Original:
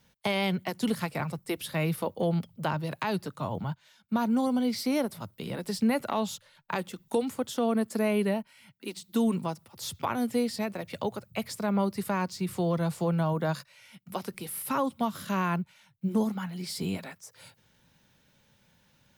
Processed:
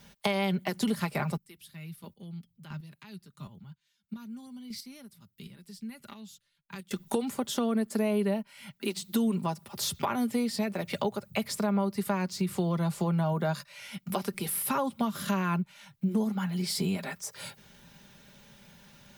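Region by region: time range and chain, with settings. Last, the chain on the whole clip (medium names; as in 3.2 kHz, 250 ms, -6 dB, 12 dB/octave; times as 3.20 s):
1.37–6.91 s: amplifier tone stack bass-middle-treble 6-0-2 + square tremolo 1.5 Hz, depth 60%, duty 15%
whole clip: comb 5 ms, depth 47%; compression 2.5:1, threshold -40 dBFS; trim +9 dB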